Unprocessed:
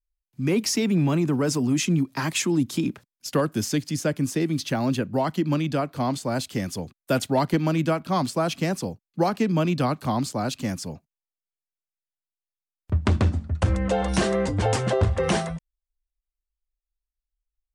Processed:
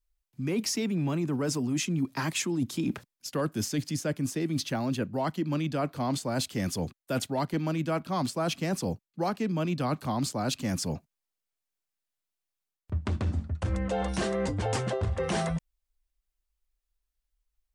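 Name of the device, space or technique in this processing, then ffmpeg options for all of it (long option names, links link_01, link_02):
compression on the reversed sound: -af "areverse,acompressor=threshold=-32dB:ratio=6,areverse,volume=5dB"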